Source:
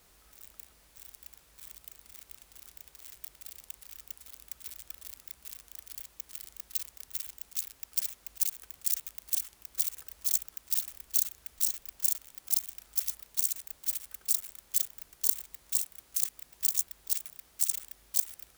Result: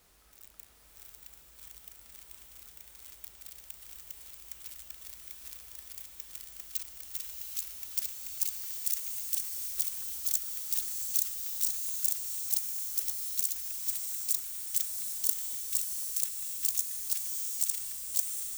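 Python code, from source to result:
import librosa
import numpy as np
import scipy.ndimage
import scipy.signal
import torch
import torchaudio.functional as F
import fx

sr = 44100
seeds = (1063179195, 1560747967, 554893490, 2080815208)

y = fx.rev_bloom(x, sr, seeds[0], attack_ms=760, drr_db=1.5)
y = F.gain(torch.from_numpy(y), -2.0).numpy()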